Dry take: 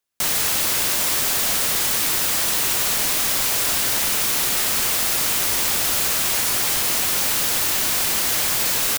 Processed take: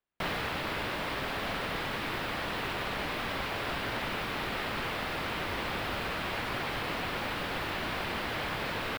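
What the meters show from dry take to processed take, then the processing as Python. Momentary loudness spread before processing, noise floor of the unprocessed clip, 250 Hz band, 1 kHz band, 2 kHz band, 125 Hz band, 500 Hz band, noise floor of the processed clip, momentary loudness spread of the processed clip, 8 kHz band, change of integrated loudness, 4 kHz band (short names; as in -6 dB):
0 LU, -21 dBFS, -3.0 dB, -4.5 dB, -7.0 dB, -2.5 dB, -3.5 dB, -36 dBFS, 0 LU, -31.5 dB, -16.0 dB, -14.0 dB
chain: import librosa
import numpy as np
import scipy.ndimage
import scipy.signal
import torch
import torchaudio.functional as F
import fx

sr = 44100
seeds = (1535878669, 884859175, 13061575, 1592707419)

y = fx.rider(x, sr, range_db=10, speed_s=0.5)
y = fx.air_absorb(y, sr, metres=430.0)
y = y * 10.0 ** (-2.5 / 20.0)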